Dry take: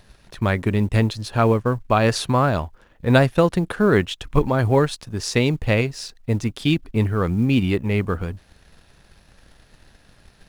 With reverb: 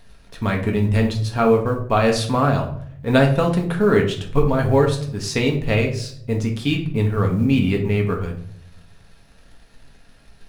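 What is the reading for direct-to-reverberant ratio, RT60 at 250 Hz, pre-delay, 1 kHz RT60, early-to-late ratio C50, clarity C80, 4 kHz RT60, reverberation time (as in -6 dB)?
0.5 dB, 1.0 s, 4 ms, 0.50 s, 9.0 dB, 13.0 dB, 0.40 s, 0.60 s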